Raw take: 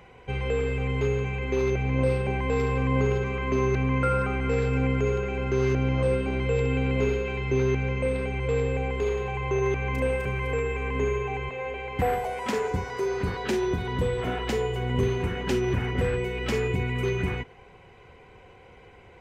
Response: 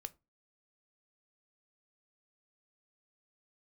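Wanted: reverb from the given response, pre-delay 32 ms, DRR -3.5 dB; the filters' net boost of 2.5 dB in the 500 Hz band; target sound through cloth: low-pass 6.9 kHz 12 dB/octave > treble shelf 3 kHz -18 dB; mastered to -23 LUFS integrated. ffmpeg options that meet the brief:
-filter_complex "[0:a]equalizer=f=500:t=o:g=3.5,asplit=2[s0][s1];[1:a]atrim=start_sample=2205,adelay=32[s2];[s1][s2]afir=irnorm=-1:irlink=0,volume=2.37[s3];[s0][s3]amix=inputs=2:normalize=0,lowpass=6900,highshelf=f=3000:g=-18,volume=0.75"

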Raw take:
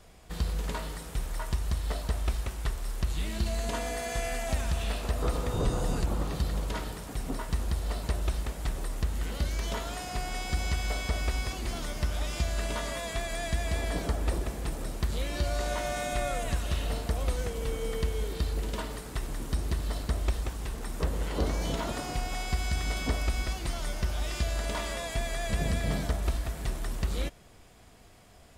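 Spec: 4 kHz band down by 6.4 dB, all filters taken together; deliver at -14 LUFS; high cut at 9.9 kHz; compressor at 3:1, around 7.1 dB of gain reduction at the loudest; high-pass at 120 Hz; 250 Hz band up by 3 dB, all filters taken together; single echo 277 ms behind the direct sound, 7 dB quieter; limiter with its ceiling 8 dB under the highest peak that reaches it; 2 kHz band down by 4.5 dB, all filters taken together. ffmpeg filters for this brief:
-af "highpass=120,lowpass=9900,equalizer=f=250:t=o:g=4.5,equalizer=f=2000:t=o:g=-4,equalizer=f=4000:t=o:g=-7,acompressor=threshold=0.0141:ratio=3,alimiter=level_in=2.51:limit=0.0631:level=0:latency=1,volume=0.398,aecho=1:1:277:0.447,volume=23.7"

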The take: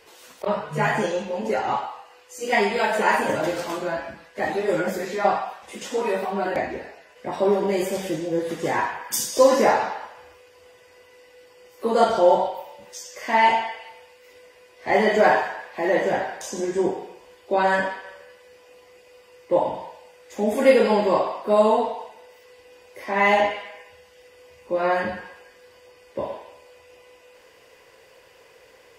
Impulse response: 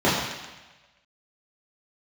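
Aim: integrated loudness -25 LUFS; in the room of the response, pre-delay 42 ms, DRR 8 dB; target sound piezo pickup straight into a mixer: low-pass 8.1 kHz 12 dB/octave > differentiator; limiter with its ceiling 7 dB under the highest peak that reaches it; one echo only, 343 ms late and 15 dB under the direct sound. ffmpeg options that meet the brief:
-filter_complex "[0:a]alimiter=limit=0.282:level=0:latency=1,aecho=1:1:343:0.178,asplit=2[s0][s1];[1:a]atrim=start_sample=2205,adelay=42[s2];[s1][s2]afir=irnorm=-1:irlink=0,volume=0.0376[s3];[s0][s3]amix=inputs=2:normalize=0,lowpass=8100,aderivative,volume=5.01"

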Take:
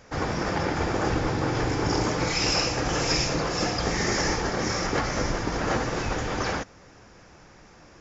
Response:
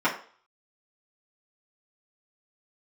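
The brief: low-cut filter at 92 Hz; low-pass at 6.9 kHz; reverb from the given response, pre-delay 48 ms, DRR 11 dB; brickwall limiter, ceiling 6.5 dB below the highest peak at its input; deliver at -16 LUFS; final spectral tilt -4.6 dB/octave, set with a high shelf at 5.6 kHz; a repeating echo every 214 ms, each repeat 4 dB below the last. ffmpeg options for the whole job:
-filter_complex "[0:a]highpass=92,lowpass=6900,highshelf=f=5600:g=-4.5,alimiter=limit=0.119:level=0:latency=1,aecho=1:1:214|428|642|856|1070|1284|1498|1712|1926:0.631|0.398|0.25|0.158|0.0994|0.0626|0.0394|0.0249|0.0157,asplit=2[s0][s1];[1:a]atrim=start_sample=2205,adelay=48[s2];[s1][s2]afir=irnorm=-1:irlink=0,volume=0.0501[s3];[s0][s3]amix=inputs=2:normalize=0,volume=3.16"

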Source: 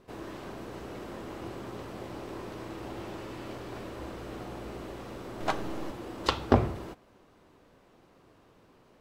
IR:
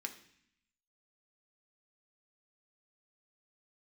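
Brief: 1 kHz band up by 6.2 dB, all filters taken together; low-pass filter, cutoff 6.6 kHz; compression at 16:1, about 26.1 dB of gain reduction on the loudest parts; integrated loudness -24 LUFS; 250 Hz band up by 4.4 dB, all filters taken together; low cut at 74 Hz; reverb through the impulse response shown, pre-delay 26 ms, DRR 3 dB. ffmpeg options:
-filter_complex "[0:a]highpass=74,lowpass=6600,equalizer=f=250:t=o:g=5,equalizer=f=1000:t=o:g=7.5,acompressor=threshold=0.0112:ratio=16,asplit=2[s0][s1];[1:a]atrim=start_sample=2205,adelay=26[s2];[s1][s2]afir=irnorm=-1:irlink=0,volume=0.794[s3];[s0][s3]amix=inputs=2:normalize=0,volume=8.91"

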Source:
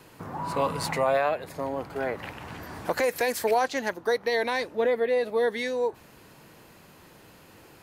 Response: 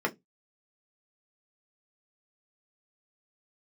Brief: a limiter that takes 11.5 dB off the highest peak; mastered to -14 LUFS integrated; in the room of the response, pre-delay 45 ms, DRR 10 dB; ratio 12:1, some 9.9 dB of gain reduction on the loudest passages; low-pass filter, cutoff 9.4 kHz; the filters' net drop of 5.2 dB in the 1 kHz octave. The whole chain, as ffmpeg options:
-filter_complex "[0:a]lowpass=9400,equalizer=f=1000:t=o:g=-7.5,acompressor=threshold=0.0251:ratio=12,alimiter=level_in=2.51:limit=0.0631:level=0:latency=1,volume=0.398,asplit=2[s0][s1];[1:a]atrim=start_sample=2205,adelay=45[s2];[s1][s2]afir=irnorm=-1:irlink=0,volume=0.106[s3];[s0][s3]amix=inputs=2:normalize=0,volume=21.1"

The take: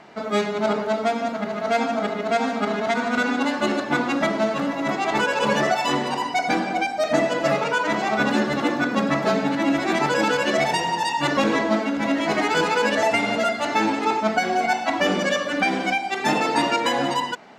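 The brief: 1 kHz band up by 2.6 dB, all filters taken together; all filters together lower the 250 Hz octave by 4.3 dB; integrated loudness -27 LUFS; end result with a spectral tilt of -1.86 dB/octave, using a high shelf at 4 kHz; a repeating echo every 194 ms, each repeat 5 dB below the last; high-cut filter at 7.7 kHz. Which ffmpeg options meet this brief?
-af "lowpass=7700,equalizer=f=250:t=o:g=-5.5,equalizer=f=1000:t=o:g=4,highshelf=f=4000:g=-4,aecho=1:1:194|388|582|776|970|1164|1358:0.562|0.315|0.176|0.0988|0.0553|0.031|0.0173,volume=0.447"

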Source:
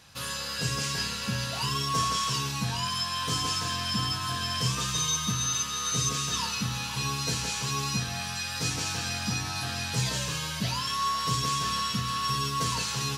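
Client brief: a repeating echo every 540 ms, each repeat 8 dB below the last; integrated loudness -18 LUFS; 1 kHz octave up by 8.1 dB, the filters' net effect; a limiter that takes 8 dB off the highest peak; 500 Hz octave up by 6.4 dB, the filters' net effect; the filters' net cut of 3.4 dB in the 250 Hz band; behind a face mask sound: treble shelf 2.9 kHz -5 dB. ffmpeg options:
-af "equalizer=f=250:t=o:g=-7.5,equalizer=f=500:t=o:g=7.5,equalizer=f=1000:t=o:g=8.5,alimiter=limit=0.119:level=0:latency=1,highshelf=f=2900:g=-5,aecho=1:1:540|1080|1620|2160|2700:0.398|0.159|0.0637|0.0255|0.0102,volume=2.99"

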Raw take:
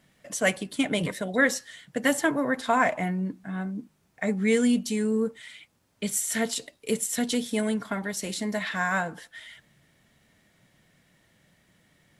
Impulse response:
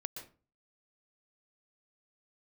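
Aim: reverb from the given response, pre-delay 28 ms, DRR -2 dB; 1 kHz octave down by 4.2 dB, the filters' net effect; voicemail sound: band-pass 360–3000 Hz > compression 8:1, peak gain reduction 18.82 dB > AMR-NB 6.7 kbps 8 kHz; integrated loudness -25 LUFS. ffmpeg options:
-filter_complex "[0:a]equalizer=f=1000:t=o:g=-5.5,asplit=2[s0][s1];[1:a]atrim=start_sample=2205,adelay=28[s2];[s1][s2]afir=irnorm=-1:irlink=0,volume=1.5[s3];[s0][s3]amix=inputs=2:normalize=0,highpass=360,lowpass=3000,acompressor=threshold=0.0178:ratio=8,volume=6.31" -ar 8000 -c:a libopencore_amrnb -b:a 6700

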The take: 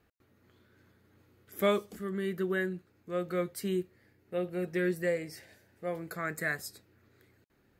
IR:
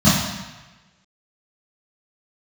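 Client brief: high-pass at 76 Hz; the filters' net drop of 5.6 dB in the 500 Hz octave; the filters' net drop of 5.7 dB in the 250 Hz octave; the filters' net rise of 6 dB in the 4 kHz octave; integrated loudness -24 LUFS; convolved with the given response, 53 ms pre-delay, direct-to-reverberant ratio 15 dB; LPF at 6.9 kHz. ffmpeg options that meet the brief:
-filter_complex "[0:a]highpass=76,lowpass=6900,equalizer=f=250:t=o:g=-8,equalizer=f=500:t=o:g=-4.5,equalizer=f=4000:t=o:g=8,asplit=2[s0][s1];[1:a]atrim=start_sample=2205,adelay=53[s2];[s1][s2]afir=irnorm=-1:irlink=0,volume=0.0133[s3];[s0][s3]amix=inputs=2:normalize=0,volume=4.22"

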